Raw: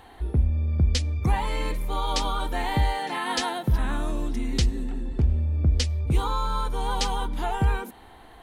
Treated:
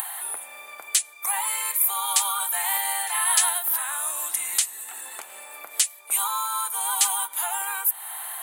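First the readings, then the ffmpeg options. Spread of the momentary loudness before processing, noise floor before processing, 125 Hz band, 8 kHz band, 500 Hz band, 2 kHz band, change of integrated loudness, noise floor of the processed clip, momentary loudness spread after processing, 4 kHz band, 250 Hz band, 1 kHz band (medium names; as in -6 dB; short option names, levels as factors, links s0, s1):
6 LU, -48 dBFS, under -40 dB, +18.0 dB, -12.0 dB, +3.0 dB, +3.5 dB, -46 dBFS, 15 LU, +2.0 dB, under -30 dB, 0.0 dB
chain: -af "highpass=f=890:w=0.5412,highpass=f=890:w=1.3066,acompressor=mode=upward:threshold=0.0224:ratio=2.5,aexciter=amount=9.1:drive=8.2:freq=7700,volume=1.33"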